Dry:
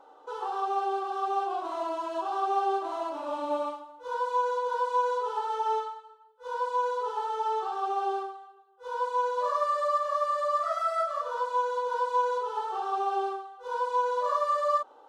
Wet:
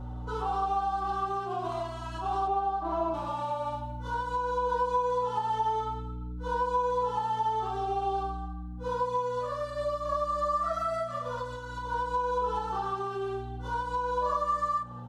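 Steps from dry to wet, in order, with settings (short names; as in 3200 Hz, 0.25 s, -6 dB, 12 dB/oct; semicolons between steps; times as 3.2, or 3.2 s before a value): 2.47–3.14 RIAA curve playback; hum 60 Hz, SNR 12 dB; compressor, threshold -31 dBFS, peak gain reduction 10 dB; outdoor echo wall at 36 m, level -17 dB; endless flanger 5.1 ms +0.52 Hz; gain +6.5 dB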